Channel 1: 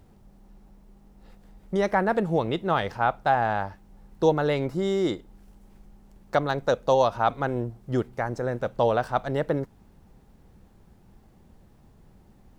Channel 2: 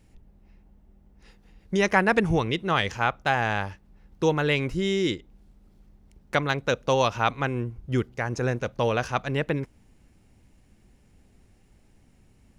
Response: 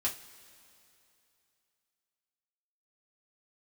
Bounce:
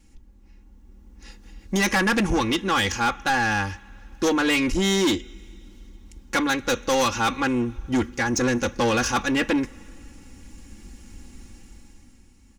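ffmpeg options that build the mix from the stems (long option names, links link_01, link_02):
-filter_complex "[0:a]volume=-14.5dB[link_01];[1:a]equalizer=frequency=6500:width_type=o:width=0.8:gain=8,aecho=1:1:3.6:0.85,volume=-1,adelay=1,volume=-1dB,asplit=2[link_02][link_03];[link_03]volume=-17dB[link_04];[2:a]atrim=start_sample=2205[link_05];[link_04][link_05]afir=irnorm=-1:irlink=0[link_06];[link_01][link_02][link_06]amix=inputs=3:normalize=0,equalizer=frequency=620:width=3.5:gain=-13,dynaudnorm=framelen=110:gausssize=17:maxgain=11.5dB,asoftclip=type=tanh:threshold=-17dB"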